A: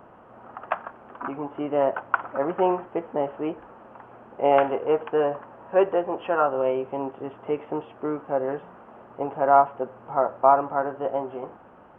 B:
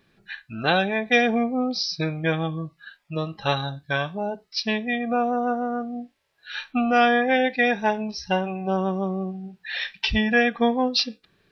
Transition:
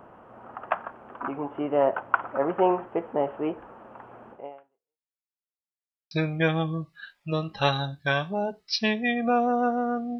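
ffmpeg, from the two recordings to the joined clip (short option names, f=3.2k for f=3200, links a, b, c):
-filter_complex "[0:a]apad=whole_dur=10.19,atrim=end=10.19,asplit=2[a][b];[a]atrim=end=5.14,asetpts=PTS-STARTPTS,afade=t=out:st=4.31:d=0.83:c=exp[c];[b]atrim=start=5.14:end=6.11,asetpts=PTS-STARTPTS,volume=0[d];[1:a]atrim=start=1.95:end=6.03,asetpts=PTS-STARTPTS,afade=t=in:d=0.004:c=hsin[e];[c][d][e]concat=n=3:v=0:a=1"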